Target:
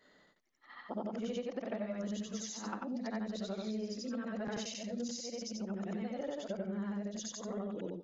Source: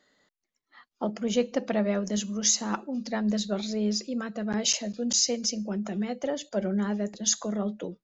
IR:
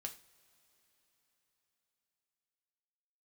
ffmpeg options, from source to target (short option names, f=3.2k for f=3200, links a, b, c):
-af "afftfilt=real='re':imag='-im':win_size=8192:overlap=0.75,acompressor=threshold=-45dB:ratio=6,aemphasis=mode=reproduction:type=50fm,volume=8dB"